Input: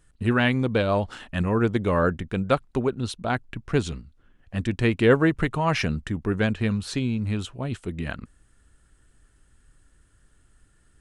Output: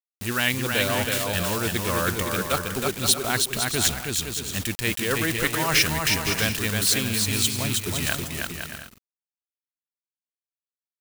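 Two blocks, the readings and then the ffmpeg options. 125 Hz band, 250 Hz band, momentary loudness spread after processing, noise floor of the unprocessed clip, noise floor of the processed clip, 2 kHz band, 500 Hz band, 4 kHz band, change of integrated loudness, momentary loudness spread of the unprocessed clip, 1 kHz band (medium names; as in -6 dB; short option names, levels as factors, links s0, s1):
-3.5 dB, -5.0 dB, 8 LU, -62 dBFS, under -85 dBFS, +4.5 dB, -4.0 dB, +12.0 dB, +2.0 dB, 11 LU, 0.0 dB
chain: -af "adynamicequalizer=threshold=0.0141:dfrequency=220:dqfactor=1.3:tfrequency=220:tqfactor=1.3:attack=5:release=100:ratio=0.375:range=2.5:mode=cutabove:tftype=bell,areverse,acompressor=threshold=0.0501:ratio=6,areverse,aeval=exprs='val(0)*gte(abs(val(0)),0.0106)':c=same,crystalizer=i=8.5:c=0,aecho=1:1:320|512|627.2|696.3|737.8:0.631|0.398|0.251|0.158|0.1"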